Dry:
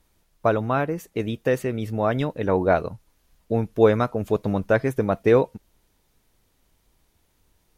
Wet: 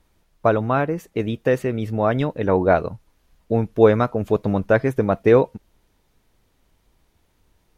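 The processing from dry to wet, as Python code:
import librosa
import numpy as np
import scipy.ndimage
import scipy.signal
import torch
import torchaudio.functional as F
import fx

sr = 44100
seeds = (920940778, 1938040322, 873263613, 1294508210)

y = fx.high_shelf(x, sr, hz=5000.0, db=-7.5)
y = F.gain(torch.from_numpy(y), 3.0).numpy()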